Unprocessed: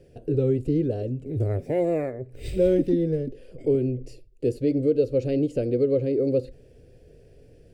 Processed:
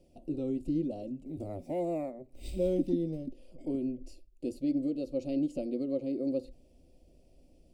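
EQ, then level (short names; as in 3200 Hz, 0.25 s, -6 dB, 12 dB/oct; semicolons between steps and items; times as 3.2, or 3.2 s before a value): fixed phaser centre 440 Hz, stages 6; -4.5 dB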